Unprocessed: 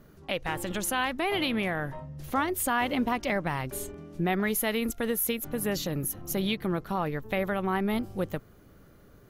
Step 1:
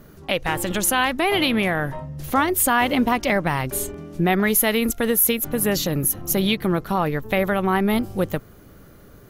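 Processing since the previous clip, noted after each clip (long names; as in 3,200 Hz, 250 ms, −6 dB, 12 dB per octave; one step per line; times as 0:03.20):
high-shelf EQ 7,500 Hz +4.5 dB
level +8 dB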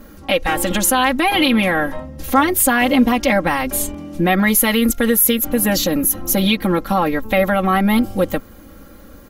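comb filter 3.7 ms, depth 86%
in parallel at −2.5 dB: brickwall limiter −13 dBFS, peak gain reduction 11 dB
on the sum: level −1 dB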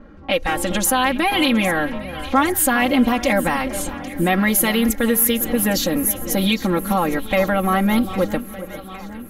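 low-pass that shuts in the quiet parts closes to 1,900 Hz, open at −13.5 dBFS
delay that swaps between a low-pass and a high-pass 404 ms, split 1,600 Hz, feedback 77%, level −13 dB
level −2.5 dB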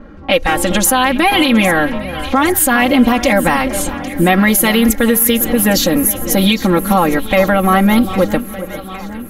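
boost into a limiter +8 dB
level −1 dB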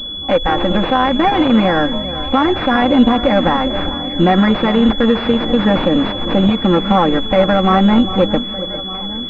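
switching amplifier with a slow clock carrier 3,400 Hz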